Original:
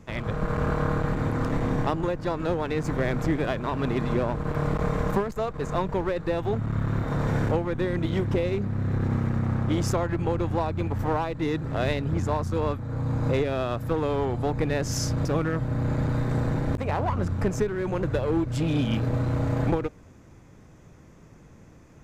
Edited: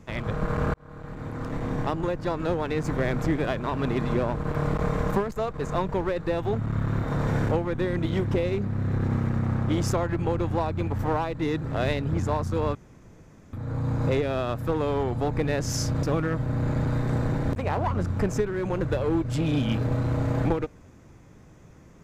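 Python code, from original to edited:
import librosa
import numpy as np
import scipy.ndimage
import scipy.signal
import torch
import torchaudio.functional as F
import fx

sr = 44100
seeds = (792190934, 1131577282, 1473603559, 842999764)

y = fx.edit(x, sr, fx.fade_in_span(start_s=0.74, length_s=1.42),
    fx.insert_room_tone(at_s=12.75, length_s=0.78), tone=tone)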